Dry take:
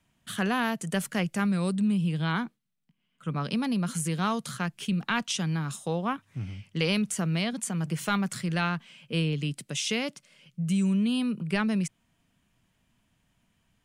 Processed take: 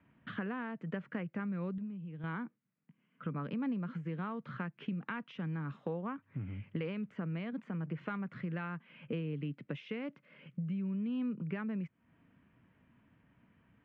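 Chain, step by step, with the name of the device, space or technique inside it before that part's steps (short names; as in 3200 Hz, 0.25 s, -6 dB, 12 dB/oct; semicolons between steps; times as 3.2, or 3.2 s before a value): bass amplifier (compressor 5:1, threshold -42 dBFS, peak gain reduction 18 dB; speaker cabinet 73–2200 Hz, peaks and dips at 280 Hz +5 dB, 480 Hz +3 dB, 730 Hz -5 dB); 1.78–2.24 gate -39 dBFS, range -7 dB; gain +4.5 dB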